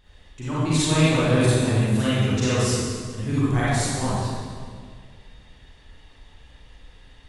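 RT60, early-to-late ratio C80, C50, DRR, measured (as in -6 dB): 1.9 s, -3.0 dB, -7.0 dB, -10.5 dB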